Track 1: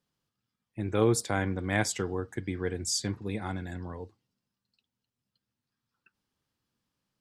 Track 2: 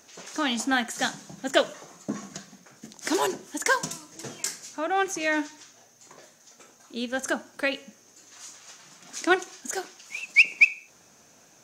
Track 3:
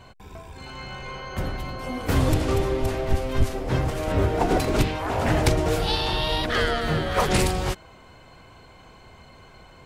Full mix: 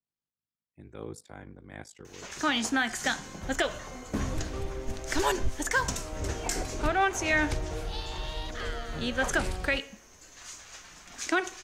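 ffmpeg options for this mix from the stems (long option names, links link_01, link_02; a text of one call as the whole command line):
ffmpeg -i stem1.wav -i stem2.wav -i stem3.wav -filter_complex "[0:a]aeval=exprs='val(0)*sin(2*PI*26*n/s)':channel_layout=same,adynamicequalizer=threshold=0.00501:dfrequency=1700:dqfactor=0.7:tfrequency=1700:tqfactor=0.7:attack=5:release=100:ratio=0.375:range=2.5:mode=cutabove:tftype=highshelf,volume=-13.5dB[link_01];[1:a]equalizer=frequency=1900:width_type=o:width=1.7:gain=5,adelay=2050,volume=-1.5dB[link_02];[2:a]asubboost=boost=2.5:cutoff=75,lowpass=11000,adelay=2050,volume=-13.5dB[link_03];[link_01][link_02][link_03]amix=inputs=3:normalize=0,alimiter=limit=-15dB:level=0:latency=1:release=101" out.wav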